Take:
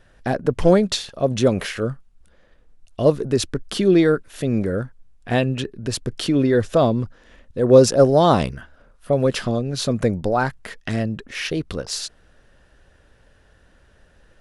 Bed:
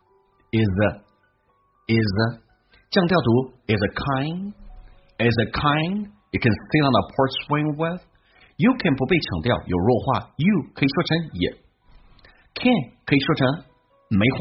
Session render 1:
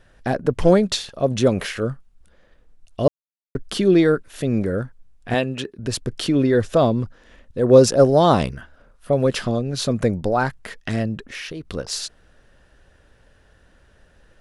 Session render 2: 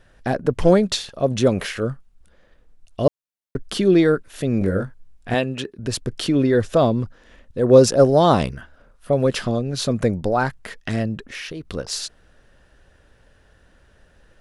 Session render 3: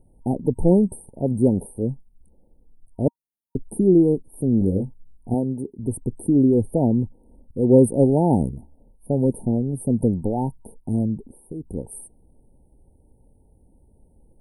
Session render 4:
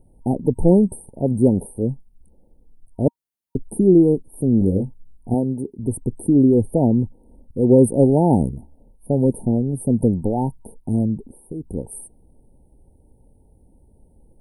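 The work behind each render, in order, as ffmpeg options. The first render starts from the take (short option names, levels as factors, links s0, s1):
-filter_complex "[0:a]asettb=1/sr,asplit=3[s0][s1][s2];[s0]atrim=end=5.344[s3];[s1]atrim=start=5.34:end=5.79,asetpts=PTS-STARTPTS,afade=t=in:d=0.004:c=qsin,afade=t=out:st=0.446:d=0.004:c=qsin,highpass=f=250:p=1[s4];[s2]atrim=start=5.786[s5];[s3][s4]acrossfade=d=0.004:c1=hsin:c2=qsin[s6];[s6][s5]acrossfade=d=0.004:c1=qsin:c2=hsin,asettb=1/sr,asplit=3[s7][s8][s9];[s7]atrim=end=11.344[s10];[s8]atrim=start=11.34:end=11.74,asetpts=PTS-STARTPTS,afade=t=in:d=0.004:c=qsin,afade=t=out:st=0.396:d=0.004:c=qsin,acompressor=threshold=0.0355:ratio=5:attack=3.2:release=140:knee=1:detection=peak[s11];[s9]atrim=start=11.736[s12];[s10][s11]acrossfade=d=0.004:c1=hsin:c2=qsin[s13];[s13][s12]acrossfade=d=0.004:c1=qsin:c2=hsin,asplit=3[s14][s15][s16];[s14]atrim=end=3.08,asetpts=PTS-STARTPTS,afade=t=out:st=3.076:d=0.004:c=hsin[s17];[s15]atrim=start=3.08:end=3.55,asetpts=PTS-STARTPTS,volume=0[s18];[s16]atrim=start=3.55,asetpts=PTS-STARTPTS,afade=t=in:d=0.004:c=hsin[s19];[s17][s18][s19]concat=n=3:v=0:a=1"
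-filter_complex "[0:a]asettb=1/sr,asplit=3[s0][s1][s2];[s0]atrim=end=4.594[s3];[s1]atrim=start=4.59:end=5.3,asetpts=PTS-STARTPTS,afade=t=in:d=0.004:c=qsin,afade=t=out:st=0.706:d=0.004:c=qsin,asplit=2[s4][s5];[s5]adelay=21,volume=0.668[s6];[s4][s6]amix=inputs=2:normalize=0,atrim=end_sample=31311[s7];[s2]atrim=start=5.296[s8];[s3][s7]acrossfade=d=0.004:c1=hsin:c2=qsin[s9];[s9][s8]acrossfade=d=0.004:c1=qsin:c2=hsin"
-af "afftfilt=real='re*(1-between(b*sr/4096,940,8400))':imag='im*(1-between(b*sr/4096,940,8400))':win_size=4096:overlap=0.75,equalizer=f=250:t=o:w=0.67:g=4,equalizer=f=630:t=o:w=0.67:g=-10,equalizer=f=1600:t=o:w=0.67:g=-12"
-af "volume=1.33,alimiter=limit=0.708:level=0:latency=1"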